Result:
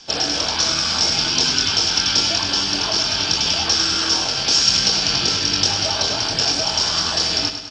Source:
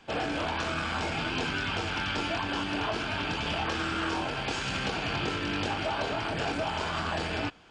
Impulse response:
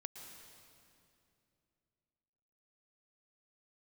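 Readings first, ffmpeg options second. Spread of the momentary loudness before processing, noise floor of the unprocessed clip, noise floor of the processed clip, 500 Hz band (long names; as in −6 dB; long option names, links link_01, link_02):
1 LU, −34 dBFS, −24 dBFS, +4.0 dB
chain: -af "aexciter=amount=2.9:drive=6.3:freq=3400,lowpass=frequency=5500:width_type=q:width=10,aecho=1:1:102|204|306|408|510|612:0.355|0.192|0.103|0.0559|0.0302|0.0163,volume=3.5dB"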